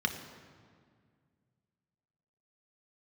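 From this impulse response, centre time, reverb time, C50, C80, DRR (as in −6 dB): 23 ms, 2.0 s, 8.5 dB, 10.0 dB, 4.5 dB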